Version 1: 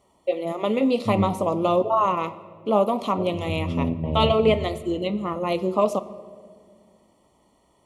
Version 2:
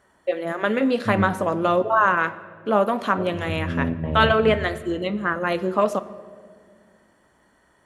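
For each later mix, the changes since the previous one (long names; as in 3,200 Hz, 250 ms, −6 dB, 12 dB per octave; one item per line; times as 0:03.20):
master: remove Butterworth band-reject 1,600 Hz, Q 1.5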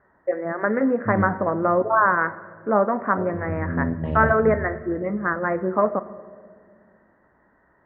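first voice: add Butterworth low-pass 2,000 Hz 72 dB per octave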